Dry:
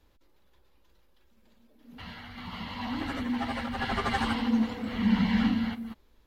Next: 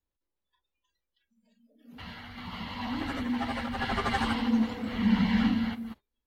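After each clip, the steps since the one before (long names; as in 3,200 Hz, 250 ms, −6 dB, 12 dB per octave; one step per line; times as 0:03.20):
noise reduction from a noise print of the clip's start 24 dB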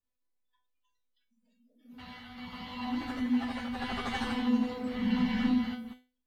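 tuned comb filter 250 Hz, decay 0.32 s, harmonics all, mix 90%
level +8.5 dB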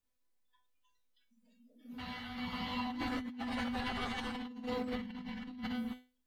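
compressor whose output falls as the input rises −38 dBFS, ratio −1
level −2 dB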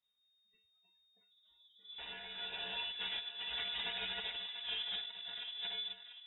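voice inversion scrambler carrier 3,700 Hz
feedback echo with a high-pass in the loop 690 ms, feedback 36%, high-pass 770 Hz, level −9 dB
level −3.5 dB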